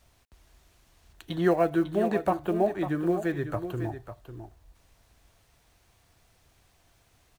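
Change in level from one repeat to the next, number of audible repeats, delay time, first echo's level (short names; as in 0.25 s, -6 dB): no steady repeat, 1, 0.549 s, -10.5 dB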